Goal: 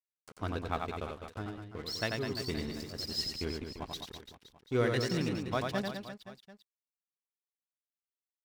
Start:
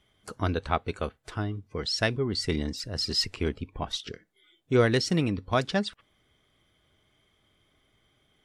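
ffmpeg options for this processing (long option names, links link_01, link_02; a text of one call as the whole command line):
ffmpeg -i in.wav -af "aeval=exprs='sgn(val(0))*max(abs(val(0))-0.0106,0)':channel_layout=same,aecho=1:1:90|202.5|343.1|518.9|738.6:0.631|0.398|0.251|0.158|0.1,volume=-7.5dB" out.wav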